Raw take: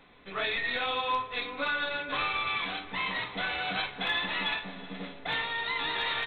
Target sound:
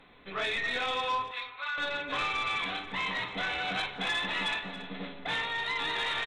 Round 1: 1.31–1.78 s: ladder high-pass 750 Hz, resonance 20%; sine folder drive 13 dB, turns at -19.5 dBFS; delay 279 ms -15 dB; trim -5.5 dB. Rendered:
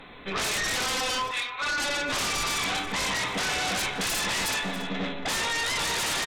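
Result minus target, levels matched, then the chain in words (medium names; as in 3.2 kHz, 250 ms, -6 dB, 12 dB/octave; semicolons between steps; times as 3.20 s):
sine folder: distortion +24 dB
1.31–1.78 s: ladder high-pass 750 Hz, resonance 20%; sine folder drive 2 dB, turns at -19.5 dBFS; delay 279 ms -15 dB; trim -5.5 dB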